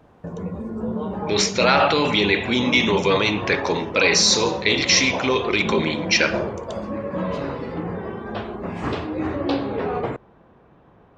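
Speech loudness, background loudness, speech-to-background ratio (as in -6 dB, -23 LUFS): -18.5 LUFS, -28.5 LUFS, 10.0 dB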